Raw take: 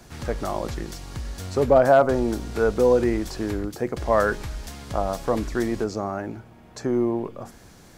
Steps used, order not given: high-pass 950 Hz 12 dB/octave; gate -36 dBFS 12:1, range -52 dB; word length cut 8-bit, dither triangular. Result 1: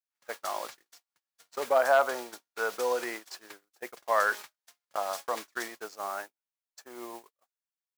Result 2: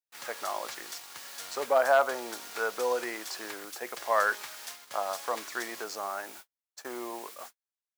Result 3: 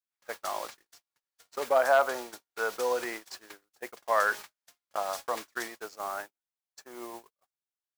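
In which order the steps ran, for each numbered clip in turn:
word length cut > high-pass > gate; word length cut > gate > high-pass; high-pass > word length cut > gate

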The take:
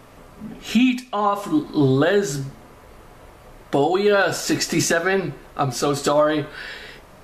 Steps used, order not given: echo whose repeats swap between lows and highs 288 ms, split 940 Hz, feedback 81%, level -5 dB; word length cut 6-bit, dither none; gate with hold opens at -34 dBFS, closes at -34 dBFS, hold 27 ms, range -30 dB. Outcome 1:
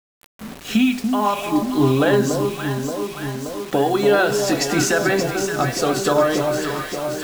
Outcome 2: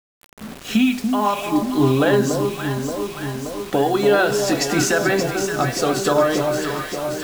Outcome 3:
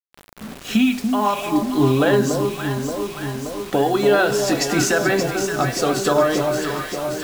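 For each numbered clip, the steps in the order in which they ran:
gate with hold > echo whose repeats swap between lows and highs > word length cut; echo whose repeats swap between lows and highs > gate with hold > word length cut; echo whose repeats swap between lows and highs > word length cut > gate with hold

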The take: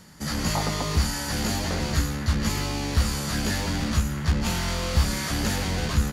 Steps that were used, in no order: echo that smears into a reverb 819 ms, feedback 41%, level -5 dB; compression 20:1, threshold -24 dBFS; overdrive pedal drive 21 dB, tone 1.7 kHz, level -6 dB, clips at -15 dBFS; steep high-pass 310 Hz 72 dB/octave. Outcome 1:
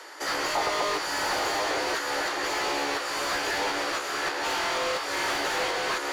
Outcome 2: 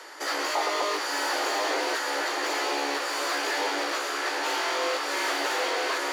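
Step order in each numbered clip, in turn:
echo that smears into a reverb > compression > steep high-pass > overdrive pedal; compression > echo that smears into a reverb > overdrive pedal > steep high-pass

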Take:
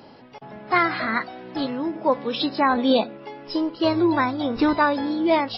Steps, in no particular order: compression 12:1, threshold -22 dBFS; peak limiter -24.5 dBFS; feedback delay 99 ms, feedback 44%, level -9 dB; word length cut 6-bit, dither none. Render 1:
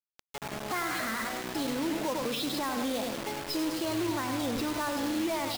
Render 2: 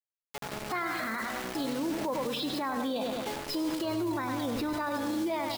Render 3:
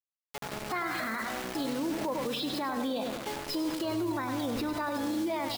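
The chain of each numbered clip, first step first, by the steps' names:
compression > feedback delay > peak limiter > word length cut; word length cut > feedback delay > peak limiter > compression; word length cut > compression > feedback delay > peak limiter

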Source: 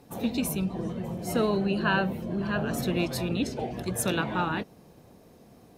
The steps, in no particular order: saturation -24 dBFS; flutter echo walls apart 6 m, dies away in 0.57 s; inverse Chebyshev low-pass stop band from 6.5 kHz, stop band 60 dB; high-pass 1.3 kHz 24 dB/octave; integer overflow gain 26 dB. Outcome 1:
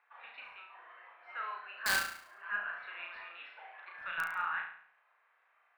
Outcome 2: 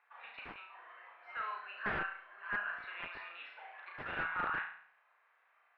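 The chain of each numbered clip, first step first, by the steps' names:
high-pass > saturation > inverse Chebyshev low-pass > integer overflow > flutter echo; high-pass > saturation > flutter echo > integer overflow > inverse Chebyshev low-pass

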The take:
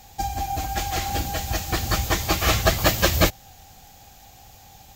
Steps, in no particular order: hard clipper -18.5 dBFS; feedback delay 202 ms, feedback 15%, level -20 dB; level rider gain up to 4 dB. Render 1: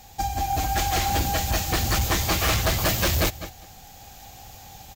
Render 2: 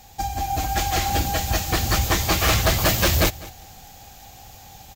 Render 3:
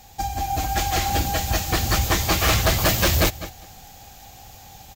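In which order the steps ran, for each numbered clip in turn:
feedback delay > level rider > hard clipper; hard clipper > feedback delay > level rider; feedback delay > hard clipper > level rider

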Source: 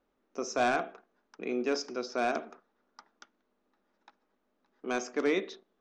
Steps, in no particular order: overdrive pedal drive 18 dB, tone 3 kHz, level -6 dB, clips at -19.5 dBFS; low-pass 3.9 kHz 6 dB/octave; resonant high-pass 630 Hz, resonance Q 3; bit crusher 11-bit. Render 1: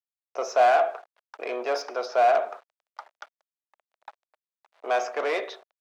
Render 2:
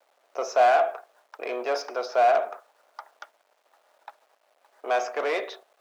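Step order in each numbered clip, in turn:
bit crusher > low-pass > overdrive pedal > resonant high-pass; low-pass > overdrive pedal > bit crusher > resonant high-pass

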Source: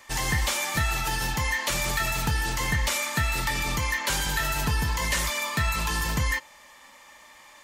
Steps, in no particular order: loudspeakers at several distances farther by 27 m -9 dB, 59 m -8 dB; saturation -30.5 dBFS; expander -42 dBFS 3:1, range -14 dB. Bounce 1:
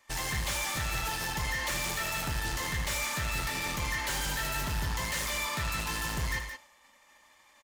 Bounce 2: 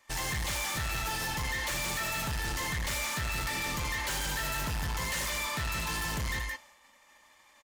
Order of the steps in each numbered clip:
saturation > expander > loudspeakers at several distances; expander > loudspeakers at several distances > saturation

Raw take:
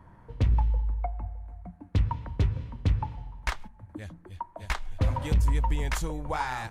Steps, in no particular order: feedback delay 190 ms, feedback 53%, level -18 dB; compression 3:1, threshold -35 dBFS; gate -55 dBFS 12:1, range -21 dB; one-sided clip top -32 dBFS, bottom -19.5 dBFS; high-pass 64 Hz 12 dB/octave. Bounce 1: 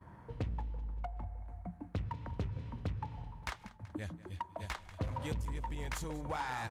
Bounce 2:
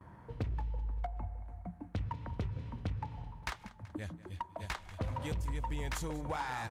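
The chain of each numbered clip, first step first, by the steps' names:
compression > feedback delay > one-sided clip > high-pass > gate; gate > high-pass > compression > feedback delay > one-sided clip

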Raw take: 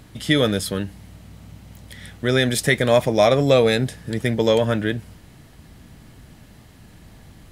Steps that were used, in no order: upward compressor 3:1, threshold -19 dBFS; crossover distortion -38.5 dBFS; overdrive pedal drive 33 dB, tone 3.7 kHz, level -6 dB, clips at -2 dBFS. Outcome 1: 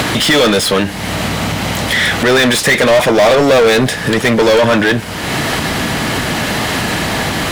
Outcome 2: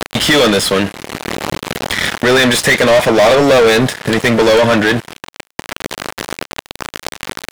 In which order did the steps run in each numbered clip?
upward compressor > overdrive pedal > crossover distortion; crossover distortion > upward compressor > overdrive pedal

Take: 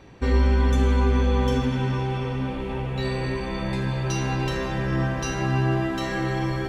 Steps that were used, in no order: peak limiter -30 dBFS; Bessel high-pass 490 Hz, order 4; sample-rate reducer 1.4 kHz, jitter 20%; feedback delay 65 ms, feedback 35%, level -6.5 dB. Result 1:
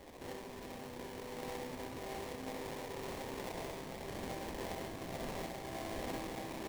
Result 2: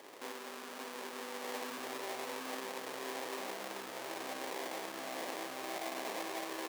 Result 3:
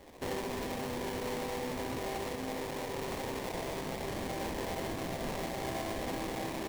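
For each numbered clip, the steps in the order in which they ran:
peak limiter > Bessel high-pass > sample-rate reducer > feedback delay; feedback delay > sample-rate reducer > peak limiter > Bessel high-pass; Bessel high-pass > sample-rate reducer > feedback delay > peak limiter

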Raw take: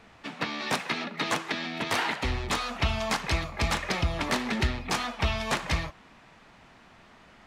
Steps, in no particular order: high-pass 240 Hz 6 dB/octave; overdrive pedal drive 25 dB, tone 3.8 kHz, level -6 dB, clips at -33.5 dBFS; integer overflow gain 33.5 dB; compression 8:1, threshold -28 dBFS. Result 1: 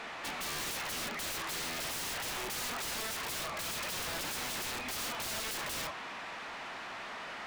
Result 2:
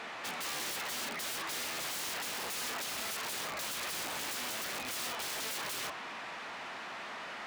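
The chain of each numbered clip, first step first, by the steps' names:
high-pass > overdrive pedal > compression > integer overflow; overdrive pedal > compression > integer overflow > high-pass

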